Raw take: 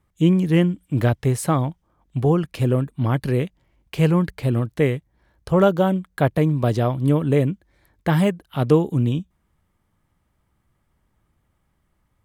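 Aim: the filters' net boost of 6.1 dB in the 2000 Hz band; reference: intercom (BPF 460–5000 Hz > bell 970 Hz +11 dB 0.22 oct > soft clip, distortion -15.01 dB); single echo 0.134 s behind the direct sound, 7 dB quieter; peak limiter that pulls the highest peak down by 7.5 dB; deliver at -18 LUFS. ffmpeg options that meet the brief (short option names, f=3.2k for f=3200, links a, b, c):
-af "equalizer=f=2k:t=o:g=7.5,alimiter=limit=-12dB:level=0:latency=1,highpass=460,lowpass=5k,equalizer=f=970:t=o:w=0.22:g=11,aecho=1:1:134:0.447,asoftclip=threshold=-17.5dB,volume=11.5dB"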